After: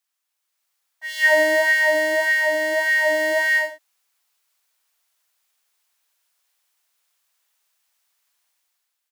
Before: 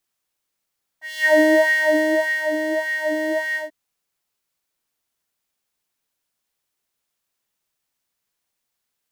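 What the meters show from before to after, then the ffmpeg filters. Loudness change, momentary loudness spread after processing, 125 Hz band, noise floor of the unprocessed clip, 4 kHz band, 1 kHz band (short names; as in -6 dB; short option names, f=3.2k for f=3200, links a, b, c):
+1.0 dB, 6 LU, n/a, -79 dBFS, +3.5 dB, +1.5 dB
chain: -af "dynaudnorm=f=240:g=5:m=9dB,highpass=770,aecho=1:1:84:0.266,volume=-1.5dB"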